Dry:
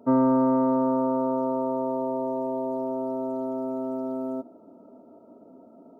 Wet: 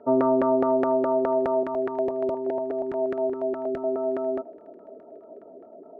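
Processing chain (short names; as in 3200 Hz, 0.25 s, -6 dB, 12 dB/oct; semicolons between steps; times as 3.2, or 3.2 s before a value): graphic EQ 125/250/500/1000 Hz -9/-11/+8/-10 dB; LFO low-pass saw down 4.8 Hz 370–1600 Hz; notch comb 520 Hz; thin delay 0.495 s, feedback 48%, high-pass 1500 Hz, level -22 dB; 1.63–3.84 stepped notch 8.4 Hz 490–1700 Hz; gain +5 dB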